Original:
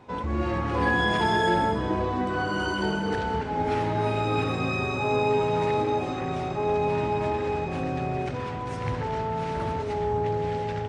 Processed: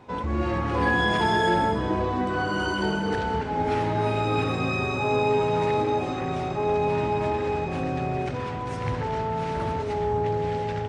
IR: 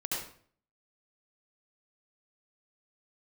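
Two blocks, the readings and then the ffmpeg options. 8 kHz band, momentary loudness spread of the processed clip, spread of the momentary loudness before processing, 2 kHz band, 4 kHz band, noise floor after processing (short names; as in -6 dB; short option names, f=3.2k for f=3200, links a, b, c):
n/a, 7 LU, 7 LU, +1.0 dB, +1.0 dB, -31 dBFS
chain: -af "acontrast=89,volume=-6dB"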